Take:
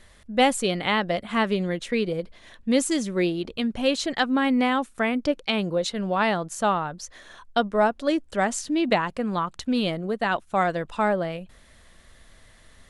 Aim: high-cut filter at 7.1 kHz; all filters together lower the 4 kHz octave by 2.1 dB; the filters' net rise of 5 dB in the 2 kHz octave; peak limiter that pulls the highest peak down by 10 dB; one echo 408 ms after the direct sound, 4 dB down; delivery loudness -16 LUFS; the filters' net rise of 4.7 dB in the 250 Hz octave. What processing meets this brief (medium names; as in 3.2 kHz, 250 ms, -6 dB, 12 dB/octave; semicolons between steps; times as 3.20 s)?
low-pass 7.1 kHz; peaking EQ 250 Hz +5.5 dB; peaking EQ 2 kHz +7.5 dB; peaking EQ 4 kHz -6.5 dB; peak limiter -15.5 dBFS; delay 408 ms -4 dB; trim +8 dB